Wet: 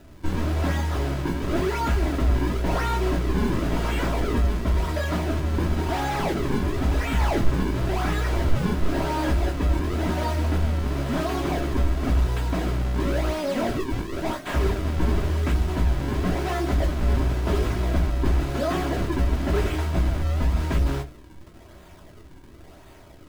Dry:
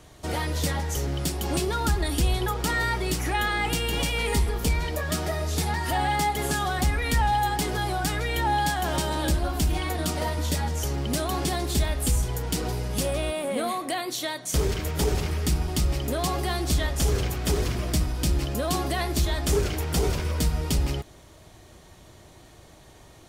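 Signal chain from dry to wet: 19.89–20.49 s: elliptic band-stop 300–710 Hz; decimation with a swept rate 39×, swing 160% 0.95 Hz; hard clipper -21.5 dBFS, distortion -14 dB; reverberation RT60 0.20 s, pre-delay 3 ms, DRR 1.5 dB; slew-rate limiter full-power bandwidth 83 Hz

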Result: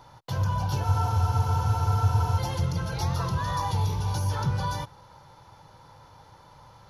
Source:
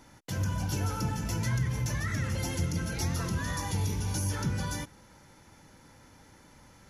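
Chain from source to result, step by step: ten-band graphic EQ 125 Hz +9 dB, 250 Hz -11 dB, 500 Hz +4 dB, 1 kHz +12 dB, 2 kHz -7 dB, 4 kHz +8 dB, 8 kHz -11 dB; spectral freeze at 0.85 s, 1.54 s

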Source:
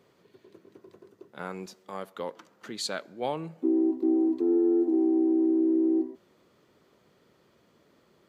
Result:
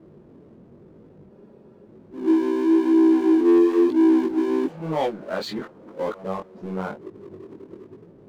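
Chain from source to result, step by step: reverse the whole clip; level-controlled noise filter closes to 350 Hz, open at -22 dBFS; power-law waveshaper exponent 0.7; chorus 0.99 Hz, delay 18.5 ms, depth 4.9 ms; spectral freeze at 1.33 s, 0.53 s; trim +7 dB

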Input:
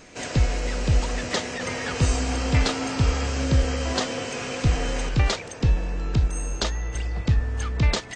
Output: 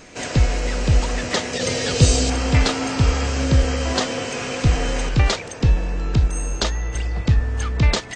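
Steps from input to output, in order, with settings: 1.53–2.30 s: ten-band graphic EQ 125 Hz +5 dB, 500 Hz +6 dB, 1 kHz -6 dB, 2 kHz -3 dB, 4 kHz +8 dB, 8 kHz +5 dB; trim +4 dB

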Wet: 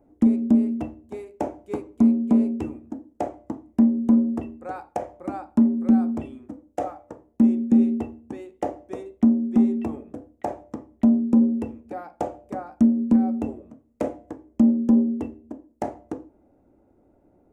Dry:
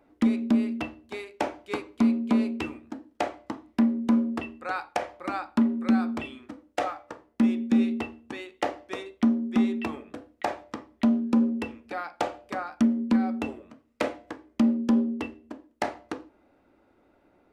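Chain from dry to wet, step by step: FFT filter 110 Hz 0 dB, 770 Hz -7 dB, 1.2 kHz -17 dB, 4.3 kHz -25 dB, 6.7 kHz -11 dB; trim +7.5 dB

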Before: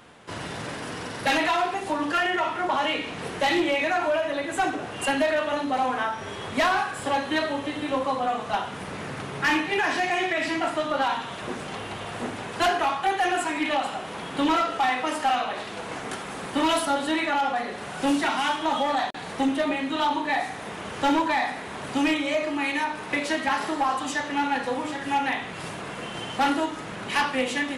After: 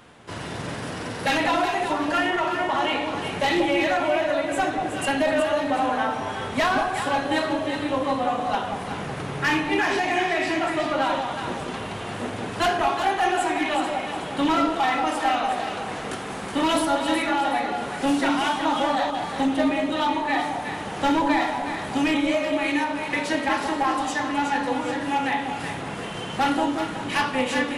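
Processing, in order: bass shelf 170 Hz +3.5 dB; echo whose repeats swap between lows and highs 185 ms, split 830 Hz, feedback 56%, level -2 dB

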